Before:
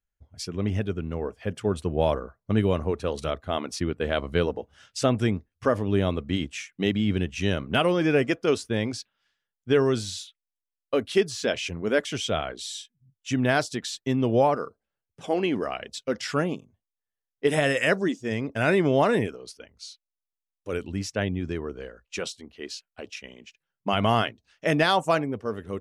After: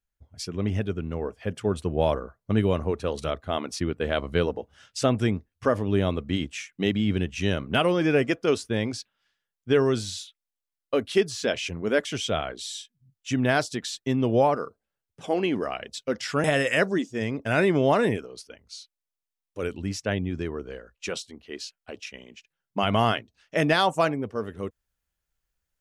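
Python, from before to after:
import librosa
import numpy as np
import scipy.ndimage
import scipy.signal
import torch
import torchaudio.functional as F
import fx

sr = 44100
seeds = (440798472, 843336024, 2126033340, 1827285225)

y = fx.edit(x, sr, fx.cut(start_s=16.44, length_s=1.1), tone=tone)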